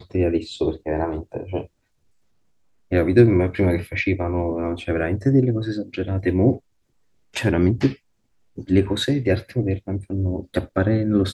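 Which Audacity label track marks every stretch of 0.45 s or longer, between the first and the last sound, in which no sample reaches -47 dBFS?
1.670000	2.910000	silence
6.590000	7.340000	silence
7.970000	8.570000	silence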